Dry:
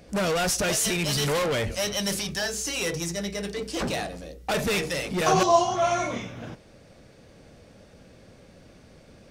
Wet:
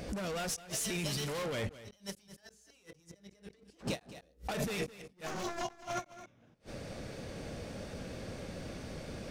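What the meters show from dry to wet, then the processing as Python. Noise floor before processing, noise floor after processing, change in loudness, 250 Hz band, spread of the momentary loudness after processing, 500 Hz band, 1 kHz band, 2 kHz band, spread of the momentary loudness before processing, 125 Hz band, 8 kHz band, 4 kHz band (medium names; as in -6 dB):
-53 dBFS, -67 dBFS, -14.0 dB, -11.0 dB, 21 LU, -14.0 dB, -16.5 dB, -13.5 dB, 11 LU, -9.5 dB, -13.0 dB, -13.5 dB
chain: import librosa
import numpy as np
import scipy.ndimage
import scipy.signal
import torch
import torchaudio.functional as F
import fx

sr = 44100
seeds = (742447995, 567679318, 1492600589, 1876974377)

p1 = np.minimum(x, 2.0 * 10.0 ** (-22.0 / 20.0) - x)
p2 = fx.dynamic_eq(p1, sr, hz=210.0, q=1.2, threshold_db=-41.0, ratio=4.0, max_db=3)
p3 = fx.over_compress(p2, sr, threshold_db=-34.0, ratio=-1.0)
p4 = fx.gate_flip(p3, sr, shuts_db=-25.0, range_db=-35)
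p5 = fx.vibrato(p4, sr, rate_hz=4.2, depth_cents=13.0)
p6 = p5 + fx.echo_single(p5, sr, ms=214, db=-16.0, dry=0)
p7 = fx.end_taper(p6, sr, db_per_s=420.0)
y = p7 * 10.0 ** (1.0 / 20.0)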